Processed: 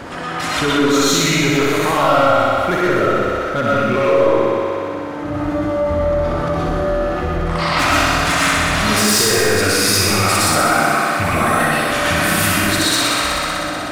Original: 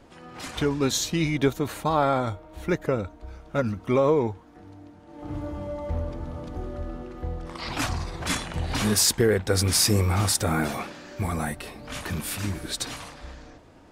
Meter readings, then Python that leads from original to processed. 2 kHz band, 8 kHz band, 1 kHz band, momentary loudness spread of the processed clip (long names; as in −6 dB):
+17.0 dB, +9.0 dB, +15.0 dB, 7 LU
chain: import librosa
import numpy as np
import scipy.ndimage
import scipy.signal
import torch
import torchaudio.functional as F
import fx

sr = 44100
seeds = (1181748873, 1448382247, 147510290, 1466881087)

y = fx.rattle_buzz(x, sr, strikes_db=-22.0, level_db=-24.0)
y = scipy.signal.sosfilt(scipy.signal.butter(2, 59.0, 'highpass', fs=sr, output='sos'), y)
y = fx.peak_eq(y, sr, hz=1500.0, db=7.0, octaves=1.4)
y = fx.rider(y, sr, range_db=4, speed_s=2.0)
y = np.clip(y, -10.0 ** (-17.0 / 20.0), 10.0 ** (-17.0 / 20.0))
y = fx.echo_thinned(y, sr, ms=62, feedback_pct=80, hz=170.0, wet_db=-4)
y = fx.rev_freeverb(y, sr, rt60_s=0.55, hf_ratio=0.6, predelay_ms=80, drr_db=-6.0)
y = fx.env_flatten(y, sr, amount_pct=50)
y = F.gain(torch.from_numpy(y), -2.0).numpy()